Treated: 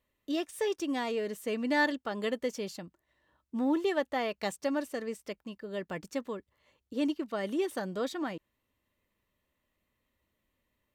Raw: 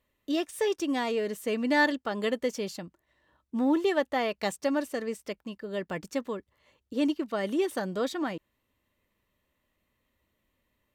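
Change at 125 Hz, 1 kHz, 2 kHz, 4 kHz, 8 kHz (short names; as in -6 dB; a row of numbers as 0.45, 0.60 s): -3.5, -3.5, -3.5, -3.5, -3.5 dB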